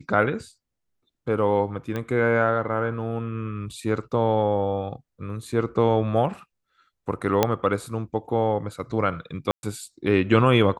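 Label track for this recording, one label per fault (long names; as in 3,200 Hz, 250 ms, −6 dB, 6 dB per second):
1.960000	1.960000	click −17 dBFS
7.430000	7.430000	click −4 dBFS
9.510000	9.630000	drop-out 121 ms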